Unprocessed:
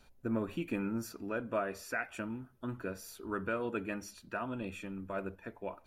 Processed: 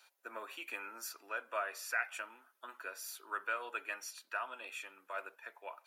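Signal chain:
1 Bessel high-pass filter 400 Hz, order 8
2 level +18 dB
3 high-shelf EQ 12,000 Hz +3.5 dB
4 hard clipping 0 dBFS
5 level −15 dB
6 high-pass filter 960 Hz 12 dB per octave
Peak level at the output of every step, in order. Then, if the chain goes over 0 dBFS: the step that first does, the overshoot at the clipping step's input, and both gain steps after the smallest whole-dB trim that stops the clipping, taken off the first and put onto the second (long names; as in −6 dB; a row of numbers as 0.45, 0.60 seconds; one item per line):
−22.5, −4.5, −4.5, −4.5, −19.5, −21.0 dBFS
no step passes full scale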